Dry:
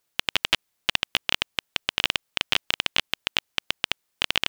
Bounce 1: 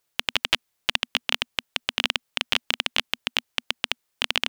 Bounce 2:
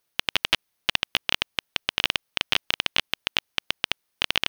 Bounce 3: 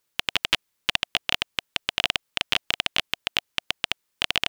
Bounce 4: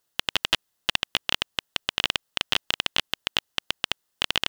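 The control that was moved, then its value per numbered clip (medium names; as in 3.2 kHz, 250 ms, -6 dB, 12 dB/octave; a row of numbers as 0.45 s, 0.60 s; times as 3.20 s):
band-stop, frequency: 240 Hz, 7.4 kHz, 710 Hz, 2.3 kHz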